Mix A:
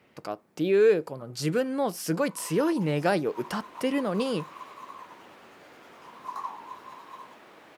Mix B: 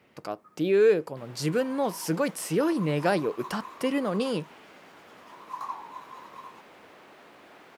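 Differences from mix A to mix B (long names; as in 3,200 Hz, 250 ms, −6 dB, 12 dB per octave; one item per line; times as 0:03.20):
first sound: entry −0.75 s
second sound: entry −2.10 s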